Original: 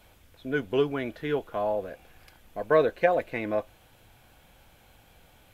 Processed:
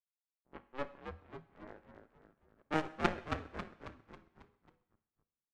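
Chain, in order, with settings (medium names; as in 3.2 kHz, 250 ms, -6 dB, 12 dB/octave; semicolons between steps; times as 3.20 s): cycle switcher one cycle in 3, inverted; feedback comb 850 Hz, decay 0.39 s, mix 80%; level-controlled noise filter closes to 1.4 kHz, open at -19.5 dBFS; formant shift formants -6 st; power-law waveshaper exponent 3; frequency-shifting echo 272 ms, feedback 51%, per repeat -83 Hz, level -6 dB; two-slope reverb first 0.76 s, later 2.9 s, from -28 dB, DRR 12.5 dB; trim +11 dB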